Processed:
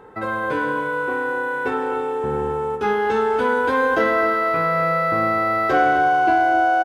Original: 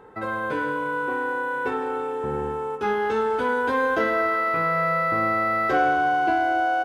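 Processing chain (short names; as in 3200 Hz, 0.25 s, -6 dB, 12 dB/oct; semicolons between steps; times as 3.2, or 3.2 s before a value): outdoor echo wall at 44 m, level -11 dB; gain +3.5 dB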